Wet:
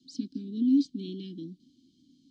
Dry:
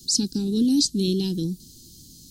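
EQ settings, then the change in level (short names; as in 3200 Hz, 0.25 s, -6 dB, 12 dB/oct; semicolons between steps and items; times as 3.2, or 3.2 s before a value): vowel filter i; air absorption 68 m; 0.0 dB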